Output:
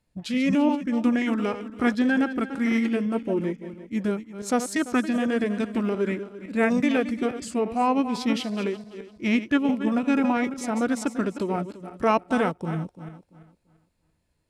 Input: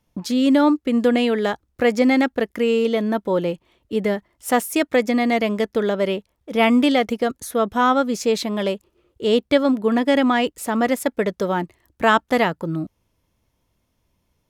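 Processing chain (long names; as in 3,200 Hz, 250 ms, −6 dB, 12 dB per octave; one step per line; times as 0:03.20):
feedback delay that plays each chunk backwards 170 ms, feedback 52%, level −11 dB
formants moved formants −5 semitones
level −5 dB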